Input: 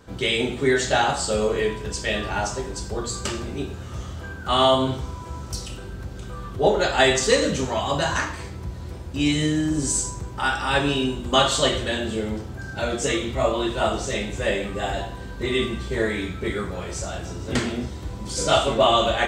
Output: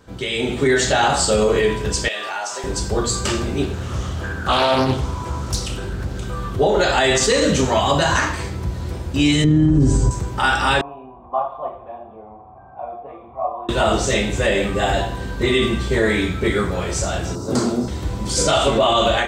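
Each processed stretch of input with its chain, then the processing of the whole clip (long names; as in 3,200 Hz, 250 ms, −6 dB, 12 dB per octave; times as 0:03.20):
0:02.08–0:02.64: high-pass filter 680 Hz + downward compressor 3 to 1, threshold −32 dBFS
0:03.63–0:06.18: upward compression, threshold −30 dBFS + highs frequency-modulated by the lows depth 0.48 ms
0:09.44–0:10.11: low-pass filter 3,800 Hz 6 dB per octave + spectral tilt −3.5 dB per octave + comb filter 7.4 ms, depth 50%
0:10.81–0:13.69: formant resonators in series a + upward compression, threshold −44 dBFS
0:17.35–0:17.88: high-pass filter 130 Hz + flat-topped bell 2,400 Hz −16 dB 1.3 octaves
whole clip: brickwall limiter −15.5 dBFS; automatic gain control gain up to 8 dB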